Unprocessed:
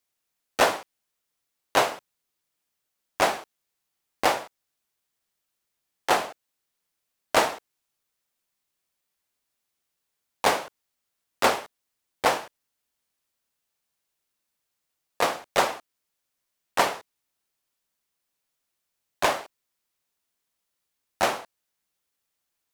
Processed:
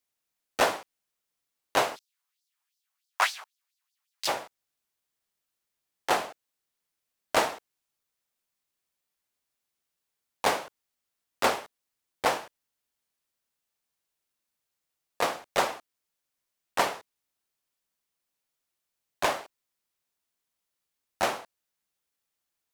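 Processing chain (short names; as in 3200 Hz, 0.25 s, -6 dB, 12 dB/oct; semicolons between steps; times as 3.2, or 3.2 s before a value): 1.95–4.27 LFO high-pass sine 2.1 Hz -> 6.8 Hz 940–4900 Hz; gain -3.5 dB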